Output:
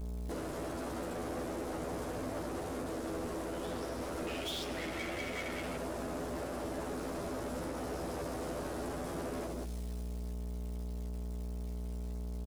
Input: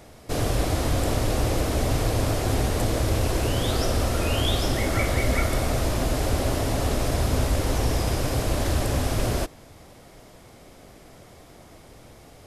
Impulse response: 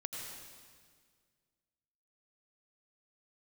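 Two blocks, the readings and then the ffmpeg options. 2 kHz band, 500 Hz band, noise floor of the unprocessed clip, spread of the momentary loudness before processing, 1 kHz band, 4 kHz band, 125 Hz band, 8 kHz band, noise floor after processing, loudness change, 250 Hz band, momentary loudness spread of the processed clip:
−12.5 dB, −11.0 dB, −49 dBFS, 2 LU, −11.5 dB, −15.0 dB, −18.5 dB, −16.5 dB, −40 dBFS, −14.5 dB, −10.5 dB, 4 LU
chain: -filter_complex "[0:a]highpass=280,acontrast=86,aecho=1:1:80|192|348.8|568.3|875.6:0.631|0.398|0.251|0.158|0.1,afwtdn=0.0891,lowpass=frequency=12000:width=0.5412,lowpass=frequency=12000:width=1.3066,highshelf=frequency=5800:gain=5.5,acrusher=bits=8:mix=0:aa=0.000001,aeval=exprs='val(0)+0.0251*(sin(2*PI*60*n/s)+sin(2*PI*2*60*n/s)/2+sin(2*PI*3*60*n/s)/3+sin(2*PI*4*60*n/s)/4+sin(2*PI*5*60*n/s)/5)':channel_layout=same,acompressor=threshold=-29dB:ratio=6,equalizer=frequency=920:width_type=o:width=2.2:gain=-6.5,asoftclip=type=tanh:threshold=-38.5dB,asplit=2[link_01][link_02];[link_02]adelay=12,volume=-4dB[link_03];[link_01][link_03]amix=inputs=2:normalize=0,volume=1dB"

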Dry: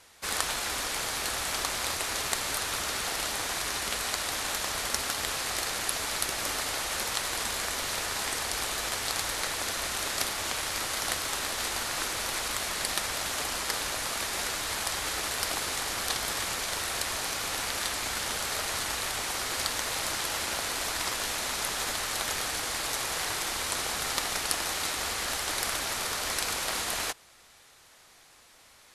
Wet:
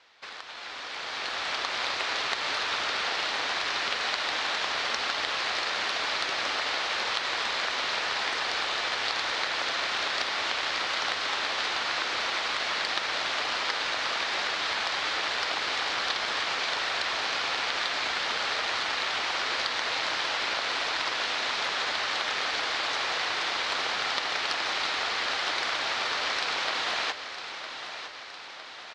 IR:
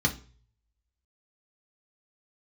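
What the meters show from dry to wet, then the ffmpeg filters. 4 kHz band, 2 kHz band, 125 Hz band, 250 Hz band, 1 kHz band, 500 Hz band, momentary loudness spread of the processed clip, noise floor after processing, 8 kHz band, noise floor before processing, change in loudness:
+3.5 dB, +5.0 dB, −10.0 dB, −2.5 dB, +4.0 dB, +1.5 dB, 2 LU, −41 dBFS, −11.0 dB, −57 dBFS, +2.0 dB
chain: -af "lowpass=frequency=4500:width=0.5412,lowpass=frequency=4500:width=1.3066,acompressor=threshold=-40dB:ratio=4,highpass=frequency=630:poles=1,dynaudnorm=framelen=460:gausssize=5:maxgain=13dB,aecho=1:1:958|1916|2874|3832|4790|5748|6706:0.282|0.166|0.0981|0.0579|0.0342|0.0201|0.0119"

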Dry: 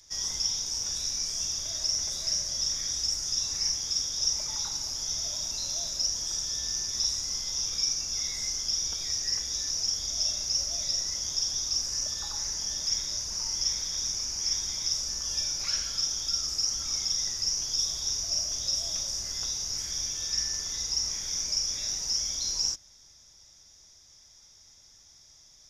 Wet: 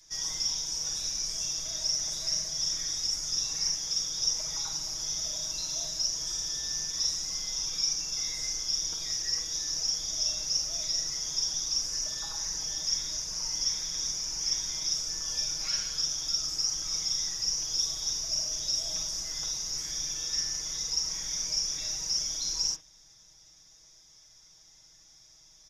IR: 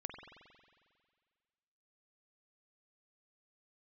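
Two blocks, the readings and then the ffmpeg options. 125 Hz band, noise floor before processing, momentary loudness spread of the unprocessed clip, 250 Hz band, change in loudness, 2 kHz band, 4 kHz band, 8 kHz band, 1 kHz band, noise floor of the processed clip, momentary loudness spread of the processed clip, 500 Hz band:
−3.0 dB, −56 dBFS, 3 LU, 0.0 dB, −1.0 dB, −0.5 dB, −1.0 dB, −1.0 dB, −1.0 dB, −57 dBFS, 3 LU, −0.5 dB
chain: -filter_complex "[0:a]aecho=1:1:6.3:0.97[link_01];[1:a]atrim=start_sample=2205,atrim=end_sample=3969[link_02];[link_01][link_02]afir=irnorm=-1:irlink=0"

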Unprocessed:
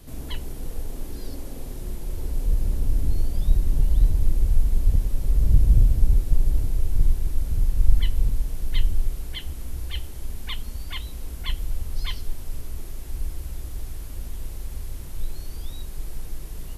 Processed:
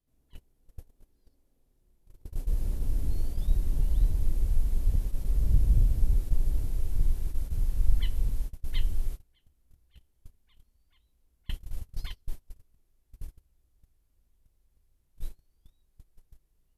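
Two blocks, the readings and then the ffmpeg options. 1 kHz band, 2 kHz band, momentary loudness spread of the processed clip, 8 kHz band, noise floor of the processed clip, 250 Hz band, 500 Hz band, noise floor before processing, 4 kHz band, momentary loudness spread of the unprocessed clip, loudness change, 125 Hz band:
−11.0 dB, −12.0 dB, 20 LU, −10.5 dB, −72 dBFS, −8.0 dB, −9.0 dB, −35 dBFS, −12.5 dB, 15 LU, −4.0 dB, −7.0 dB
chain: -af "agate=range=-30dB:threshold=-22dB:ratio=16:detection=peak,volume=-6.5dB"

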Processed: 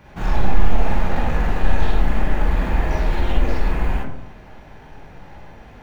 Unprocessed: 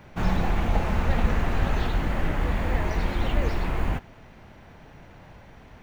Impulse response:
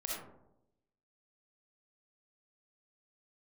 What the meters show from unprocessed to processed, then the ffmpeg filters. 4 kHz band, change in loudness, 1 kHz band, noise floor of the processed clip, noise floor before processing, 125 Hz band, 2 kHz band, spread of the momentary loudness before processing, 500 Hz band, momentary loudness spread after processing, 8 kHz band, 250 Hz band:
+2.0 dB, +4.0 dB, +4.0 dB, −42 dBFS, −49 dBFS, +3.0 dB, +3.0 dB, 3 LU, +3.5 dB, 10 LU, can't be measured, +2.5 dB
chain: -filter_complex "[0:a]asoftclip=type=tanh:threshold=-20dB[link_01];[1:a]atrim=start_sample=2205,asetrate=57330,aresample=44100[link_02];[link_01][link_02]afir=irnorm=-1:irlink=0,volume=6dB"

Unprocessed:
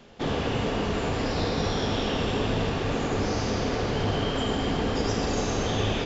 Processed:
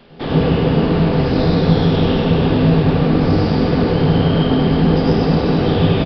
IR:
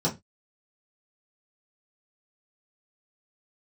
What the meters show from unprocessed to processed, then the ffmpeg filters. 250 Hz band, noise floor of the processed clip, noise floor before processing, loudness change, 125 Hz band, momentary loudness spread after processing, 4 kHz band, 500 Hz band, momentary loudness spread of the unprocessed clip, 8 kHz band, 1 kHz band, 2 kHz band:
+14.5 dB, −21 dBFS, −29 dBFS, +12.0 dB, +15.0 dB, 2 LU, +5.0 dB, +10.5 dB, 1 LU, can't be measured, +7.5 dB, +5.5 dB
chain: -filter_complex "[0:a]asplit=2[link_01][link_02];[1:a]atrim=start_sample=2205,lowshelf=frequency=340:gain=6,adelay=98[link_03];[link_02][link_03]afir=irnorm=-1:irlink=0,volume=-13dB[link_04];[link_01][link_04]amix=inputs=2:normalize=0,aresample=11025,aresample=44100,volume=4.5dB"

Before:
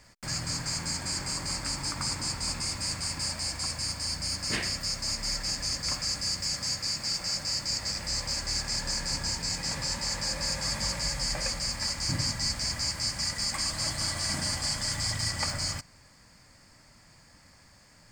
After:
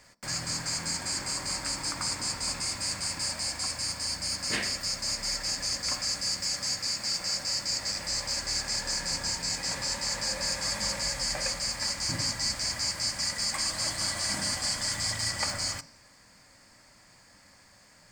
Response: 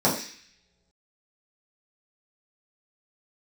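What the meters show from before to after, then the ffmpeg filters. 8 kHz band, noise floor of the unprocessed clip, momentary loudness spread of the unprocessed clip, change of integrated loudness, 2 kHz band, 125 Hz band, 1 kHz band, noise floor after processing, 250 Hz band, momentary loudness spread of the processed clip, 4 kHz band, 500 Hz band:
+1.5 dB, −57 dBFS, 2 LU, +0.5 dB, +1.5 dB, −5.5 dB, +0.5 dB, −58 dBFS, −2.0 dB, 2 LU, 0.0 dB, +1.0 dB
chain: -filter_complex "[0:a]lowshelf=frequency=290:gain=-7.5,asplit=2[link_01][link_02];[1:a]atrim=start_sample=2205[link_03];[link_02][link_03]afir=irnorm=-1:irlink=0,volume=-29dB[link_04];[link_01][link_04]amix=inputs=2:normalize=0,volume=1dB"

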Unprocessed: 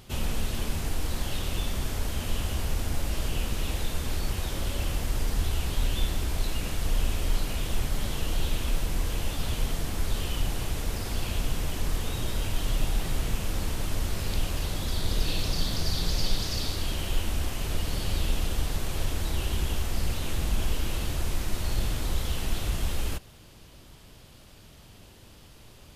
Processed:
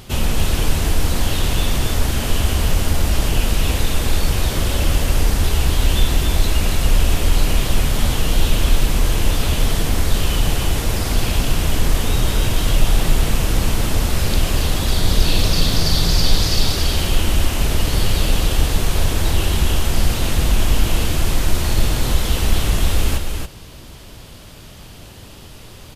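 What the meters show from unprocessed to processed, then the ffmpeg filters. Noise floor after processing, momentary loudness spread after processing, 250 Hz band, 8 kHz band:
−39 dBFS, 3 LU, +12.0 dB, +12.0 dB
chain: -filter_complex "[0:a]acontrast=77,asplit=2[link_01][link_02];[link_02]aecho=0:1:279:0.562[link_03];[link_01][link_03]amix=inputs=2:normalize=0,volume=4dB"

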